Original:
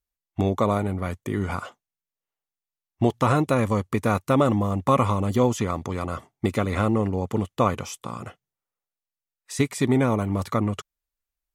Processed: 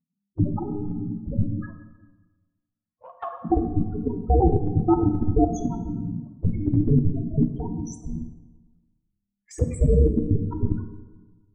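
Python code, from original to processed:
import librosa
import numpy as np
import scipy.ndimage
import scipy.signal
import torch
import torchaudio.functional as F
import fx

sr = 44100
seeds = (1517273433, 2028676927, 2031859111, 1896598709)

p1 = fx.octave_divider(x, sr, octaves=2, level_db=-2.0)
p2 = fx.over_compress(p1, sr, threshold_db=-26.0, ratio=-1.0)
p3 = p1 + F.gain(torch.from_numpy(p2), -0.5).numpy()
p4 = fx.double_bandpass(p3, sr, hz=1200.0, octaves=0.78, at=(1.61, 3.45))
p5 = p4 * np.sin(2.0 * np.pi * 200.0 * np.arange(len(p4)) / sr)
p6 = fx.spec_topn(p5, sr, count=4)
p7 = fx.env_flanger(p6, sr, rest_ms=11.1, full_db=-26.5)
p8 = fx.level_steps(p7, sr, step_db=13)
p9 = fx.rev_plate(p8, sr, seeds[0], rt60_s=1.3, hf_ratio=0.6, predelay_ms=0, drr_db=6.5)
y = F.gain(torch.from_numpy(p9), 9.0).numpy()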